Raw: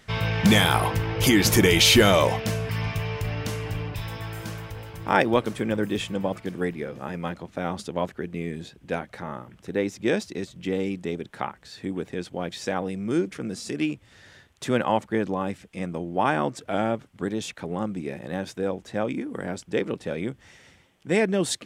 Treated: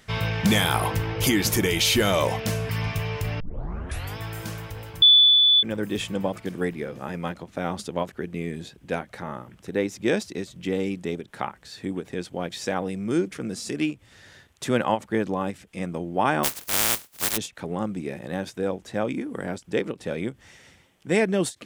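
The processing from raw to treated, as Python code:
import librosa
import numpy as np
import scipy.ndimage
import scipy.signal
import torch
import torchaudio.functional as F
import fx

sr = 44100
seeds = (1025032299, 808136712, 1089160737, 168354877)

y = fx.spec_flatten(x, sr, power=0.13, at=(16.43, 17.36), fade=0.02)
y = fx.edit(y, sr, fx.tape_start(start_s=3.4, length_s=0.77),
    fx.bleep(start_s=5.02, length_s=0.61, hz=3470.0, db=-9.0), tone=tone)
y = fx.high_shelf(y, sr, hz=7600.0, db=5.0)
y = fx.rider(y, sr, range_db=3, speed_s=0.5)
y = fx.end_taper(y, sr, db_per_s=350.0)
y = y * librosa.db_to_amplitude(-2.5)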